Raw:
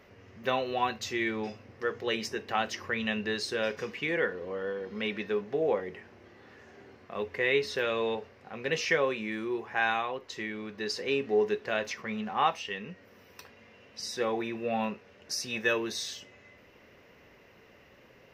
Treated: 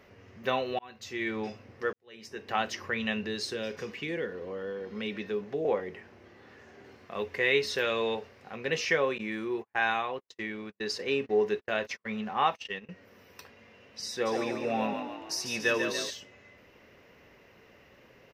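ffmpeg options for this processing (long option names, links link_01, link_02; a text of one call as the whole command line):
ffmpeg -i in.wav -filter_complex "[0:a]asettb=1/sr,asplit=3[link_01][link_02][link_03];[link_01]atrim=end=3.234[link_04];[link_02]atrim=start=3.23:end=5.65,asetpts=PTS-STARTPTS,afade=type=in:duration=0.004:curve=qsin,afade=type=out:start_time=2.416:duration=0.004:curve=qsin,acrossover=split=470|3000[link_05][link_06][link_07];[link_06]acompressor=threshold=-40dB:ratio=6:attack=3.2:release=140:knee=2.83:detection=peak[link_08];[link_05][link_08][link_07]amix=inputs=3:normalize=0[link_09];[link_03]atrim=start=5.646[link_10];[link_04][link_09]acrossfade=duration=0.004:curve1=hsin:curve2=qsin[link_11];[link_11][link_10]acrossfade=duration=0.004:curve1=qsin:curve2=hsin,asettb=1/sr,asplit=3[link_12][link_13][link_14];[link_12]atrim=end=6.844[link_15];[link_13]atrim=start=6.84:end=8.56,asetpts=PTS-STARTPTS,afade=type=in:duration=0.004:curve=qsin,afade=type=out:start_time=1.716:duration=0.004:curve=qsin,highshelf=frequency=2900:gain=5.5[link_16];[link_14]atrim=start=8.556[link_17];[link_15][link_16]acrossfade=duration=0.004:curve1=hsin:curve2=qsin[link_18];[link_18][link_17]acrossfade=duration=0.004:curve1=qsin:curve2=hsin,asettb=1/sr,asplit=3[link_19][link_20][link_21];[link_19]atrim=end=9.184[link_22];[link_20]atrim=start=9.18:end=12.89,asetpts=PTS-STARTPTS,afade=type=in:duration=0.004:curve=qsin,afade=type=out:start_time=3.706:duration=0.004:curve=qsin,agate=range=-43dB:threshold=-40dB:ratio=16:release=100:detection=peak[link_23];[link_21]atrim=start=12.886[link_24];[link_22][link_23]acrossfade=duration=0.004:curve1=hsin:curve2=qsin[link_25];[link_25][link_24]acrossfade=duration=0.004:curve1=qsin:curve2=hsin,asplit=3[link_26][link_27][link_28];[link_26]afade=type=out:start_time=14.25:duration=0.02[link_29];[link_27]asplit=8[link_30][link_31][link_32][link_33][link_34][link_35][link_36][link_37];[link_31]adelay=143,afreqshift=36,volume=-6dB[link_38];[link_32]adelay=286,afreqshift=72,volume=-11.4dB[link_39];[link_33]adelay=429,afreqshift=108,volume=-16.7dB[link_40];[link_34]adelay=572,afreqshift=144,volume=-22.1dB[link_41];[link_35]adelay=715,afreqshift=180,volume=-27.4dB[link_42];[link_36]adelay=858,afreqshift=216,volume=-32.8dB[link_43];[link_37]adelay=1001,afreqshift=252,volume=-38.1dB[link_44];[link_30][link_38][link_39][link_40][link_41][link_42][link_43][link_44]amix=inputs=8:normalize=0,afade=type=in:start_time=14.25:duration=0.02,afade=type=out:start_time=16.09:duration=0.02[link_45];[link_28]afade=type=in:start_time=16.09:duration=0.02[link_46];[link_29][link_45][link_46]amix=inputs=3:normalize=0,asplit=3[link_47][link_48][link_49];[link_47]atrim=end=0.79,asetpts=PTS-STARTPTS,afade=type=out:start_time=0.786:duration=0.004:curve=hsin[link_50];[link_48]atrim=start=0.79:end=1.93,asetpts=PTS-STARTPTS,afade=type=in:duration=0.58,afade=type=out:start_time=1.136:duration=0.004:curve=hsin[link_51];[link_49]atrim=start=1.93,asetpts=PTS-STARTPTS,afade=type=in:duration=0.6:curve=qua[link_52];[link_50][link_51][link_52]concat=n=3:v=0:a=1" out.wav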